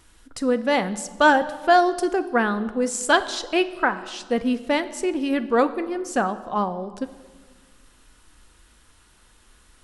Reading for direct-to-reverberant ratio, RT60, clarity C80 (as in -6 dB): 11.5 dB, 1.5 s, 16.0 dB